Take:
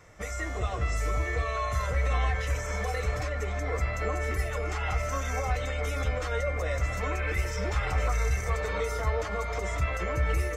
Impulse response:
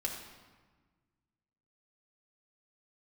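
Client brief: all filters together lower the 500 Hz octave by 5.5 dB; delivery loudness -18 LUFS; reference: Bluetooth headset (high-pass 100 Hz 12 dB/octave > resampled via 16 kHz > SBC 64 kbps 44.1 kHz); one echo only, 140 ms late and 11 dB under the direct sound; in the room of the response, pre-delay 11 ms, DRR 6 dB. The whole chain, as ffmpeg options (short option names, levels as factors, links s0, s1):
-filter_complex "[0:a]equalizer=f=500:t=o:g=-6.5,aecho=1:1:140:0.282,asplit=2[s0][s1];[1:a]atrim=start_sample=2205,adelay=11[s2];[s1][s2]afir=irnorm=-1:irlink=0,volume=0.376[s3];[s0][s3]amix=inputs=2:normalize=0,highpass=100,aresample=16000,aresample=44100,volume=5.31" -ar 44100 -c:a sbc -b:a 64k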